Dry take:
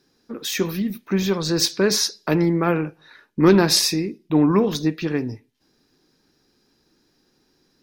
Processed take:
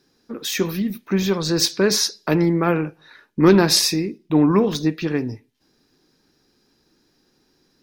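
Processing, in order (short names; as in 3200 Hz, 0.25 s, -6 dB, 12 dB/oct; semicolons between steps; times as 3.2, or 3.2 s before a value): 3.94–4.78 median filter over 3 samples; gain +1 dB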